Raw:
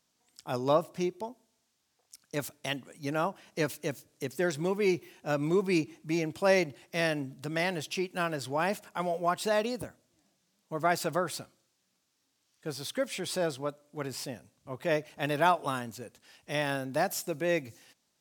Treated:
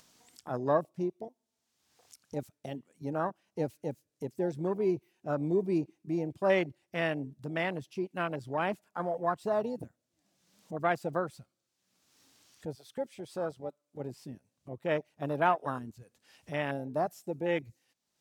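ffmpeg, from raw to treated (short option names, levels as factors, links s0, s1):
-filter_complex "[0:a]asettb=1/sr,asplit=3[s0][s1][s2];[s0]atrim=end=12.754[s3];[s1]atrim=start=12.75:end=14,asetpts=PTS-STARTPTS,afade=t=in:d=0.004:c=qsin,afade=t=out:st=1.246:d=0.004:c=qsin,lowshelf=f=420:g=-5.5[s4];[s2]atrim=start=13.996[s5];[s3][s4]acrossfade=d=0.004:c1=hsin:c2=qsin[s6];[s6][s5]acrossfade=d=0.004:c1=qsin:c2=hsin,afwtdn=0.0251,acompressor=mode=upward:threshold=0.0112:ratio=2.5,volume=0.841"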